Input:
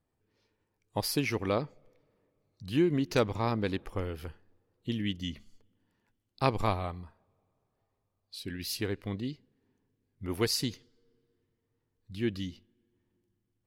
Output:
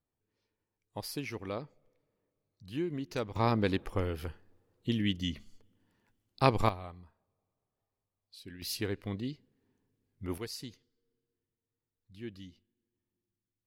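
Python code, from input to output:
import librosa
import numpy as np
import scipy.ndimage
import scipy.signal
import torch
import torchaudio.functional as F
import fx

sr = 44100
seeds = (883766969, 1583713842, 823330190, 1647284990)

y = fx.gain(x, sr, db=fx.steps((0.0, -8.5), (3.36, 2.0), (6.69, -9.0), (8.62, -1.5), (10.38, -12.0)))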